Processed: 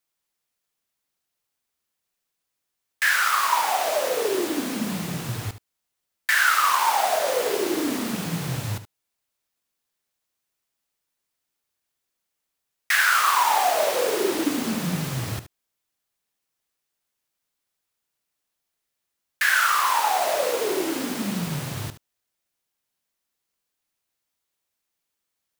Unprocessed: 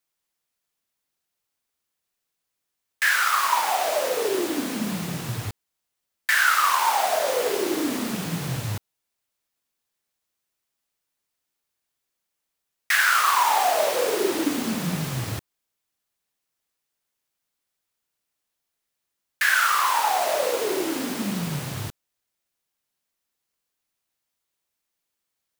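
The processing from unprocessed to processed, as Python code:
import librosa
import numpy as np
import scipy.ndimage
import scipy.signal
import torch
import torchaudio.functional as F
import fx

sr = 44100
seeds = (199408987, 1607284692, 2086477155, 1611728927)

y = x + 10.0 ** (-13.0 / 20.0) * np.pad(x, (int(73 * sr / 1000.0), 0))[:len(x)]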